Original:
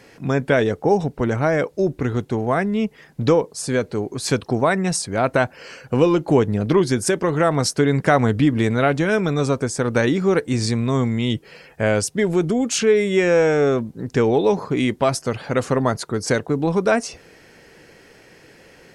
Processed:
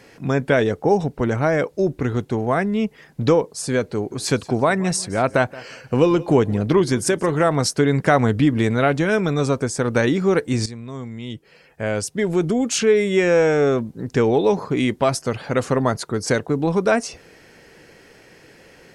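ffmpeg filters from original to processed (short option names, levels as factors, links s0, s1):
-filter_complex "[0:a]asettb=1/sr,asplit=3[s0][s1][s2];[s0]atrim=end=3.934[s3];[s1]atrim=start=3.93:end=7.51,asetpts=PTS-STARTPTS,afade=t=in:d=0.004:c=qsin,afade=t=out:st=3.576:d=0.004:c=qsin,aecho=1:1:175|350:0.1|0.028,atrim=end_sample=157878[s4];[s2]atrim=start=7.506[s5];[s3][s4]acrossfade=d=0.004:c1=hsin:c2=qsin[s6];[s6][s5]acrossfade=d=0.004:c1=qsin:c2=hsin,asplit=2[s7][s8];[s7]atrim=end=10.66,asetpts=PTS-STARTPTS,afade=t=out:st=10.656:d=0.004:c=hsin:silence=0.211349[s9];[s8]atrim=start=10.66,asetpts=PTS-STARTPTS,afade=t=in:d=1.8:c=qua:silence=0.211349[s10];[s9][s10]concat=n=2:v=0:a=1"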